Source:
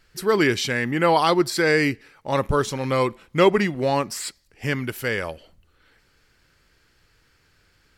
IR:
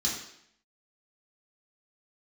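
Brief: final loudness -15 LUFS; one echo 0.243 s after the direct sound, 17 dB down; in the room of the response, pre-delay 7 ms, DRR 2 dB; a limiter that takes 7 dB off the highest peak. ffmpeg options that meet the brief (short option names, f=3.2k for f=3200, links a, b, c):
-filter_complex "[0:a]alimiter=limit=-11.5dB:level=0:latency=1,aecho=1:1:243:0.141,asplit=2[a][b];[1:a]atrim=start_sample=2205,adelay=7[c];[b][c]afir=irnorm=-1:irlink=0,volume=-8.5dB[d];[a][d]amix=inputs=2:normalize=0,volume=6dB"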